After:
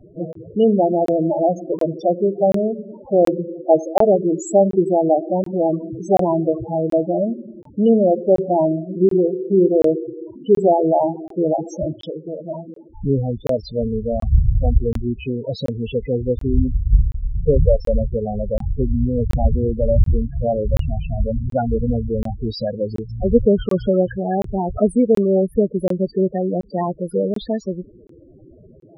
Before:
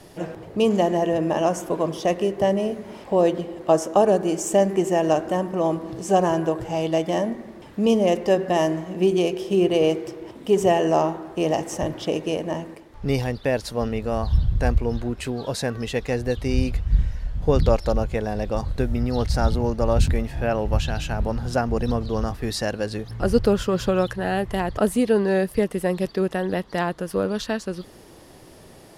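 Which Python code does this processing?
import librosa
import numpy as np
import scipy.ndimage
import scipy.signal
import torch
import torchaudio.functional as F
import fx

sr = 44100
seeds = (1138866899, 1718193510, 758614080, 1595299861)

y = fx.spec_topn(x, sr, count=8)
y = fx.graphic_eq(y, sr, hz=(250, 500, 1000, 2000), db=(-11, -8, 11, 9), at=(11.93, 12.66), fade=0.02)
y = fx.buffer_crackle(y, sr, first_s=0.33, period_s=0.73, block=1024, kind='zero')
y = F.gain(torch.from_numpy(y), 5.0).numpy()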